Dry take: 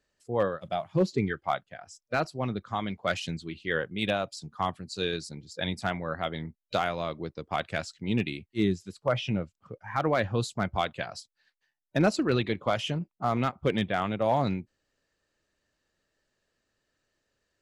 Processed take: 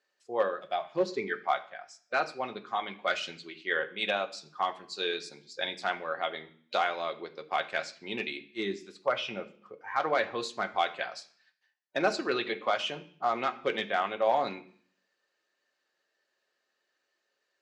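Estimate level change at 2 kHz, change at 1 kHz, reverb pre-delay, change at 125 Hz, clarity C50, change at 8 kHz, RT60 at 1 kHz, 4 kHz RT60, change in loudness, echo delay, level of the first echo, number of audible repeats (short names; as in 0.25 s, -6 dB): +1.5 dB, +1.0 dB, 3 ms, -20.0 dB, 15.5 dB, -4.0 dB, 0.55 s, 0.60 s, -2.0 dB, none, none, none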